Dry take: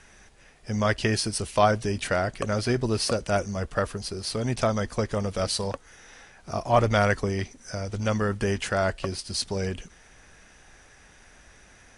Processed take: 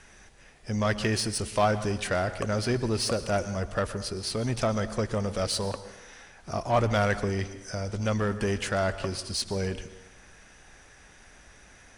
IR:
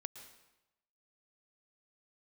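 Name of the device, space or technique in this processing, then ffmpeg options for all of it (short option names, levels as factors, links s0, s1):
saturated reverb return: -filter_complex "[0:a]asplit=2[s0][s1];[1:a]atrim=start_sample=2205[s2];[s1][s2]afir=irnorm=-1:irlink=0,asoftclip=type=tanh:threshold=0.0398,volume=1.78[s3];[s0][s3]amix=inputs=2:normalize=0,volume=0.473"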